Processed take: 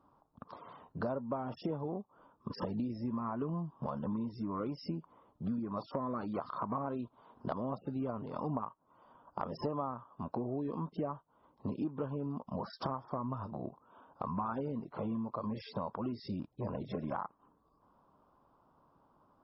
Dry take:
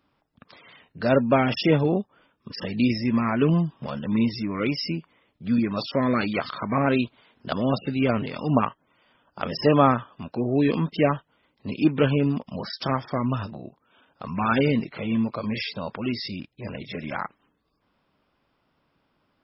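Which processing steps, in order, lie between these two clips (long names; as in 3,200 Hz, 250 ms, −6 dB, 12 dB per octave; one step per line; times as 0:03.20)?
high shelf with overshoot 1,500 Hz −12.5 dB, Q 3
downward compressor 10 to 1, threshold −34 dBFS, peak gain reduction 24 dB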